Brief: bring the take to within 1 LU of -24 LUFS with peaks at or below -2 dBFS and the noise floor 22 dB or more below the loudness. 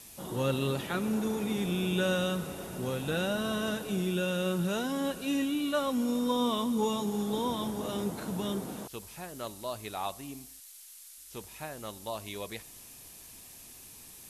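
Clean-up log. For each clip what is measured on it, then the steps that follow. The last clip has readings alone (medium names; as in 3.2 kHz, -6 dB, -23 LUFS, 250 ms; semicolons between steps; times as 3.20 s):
noise floor -51 dBFS; noise floor target -55 dBFS; loudness -32.5 LUFS; peak level -18.0 dBFS; loudness target -24.0 LUFS
-> noise print and reduce 6 dB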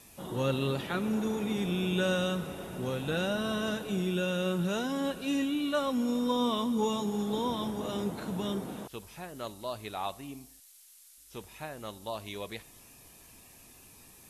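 noise floor -56 dBFS; loudness -32.0 LUFS; peak level -18.0 dBFS; loudness target -24.0 LUFS
-> trim +8 dB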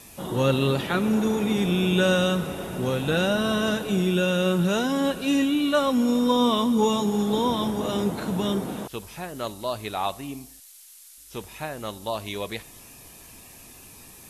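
loudness -24.0 LUFS; peak level -10.0 dBFS; noise floor -48 dBFS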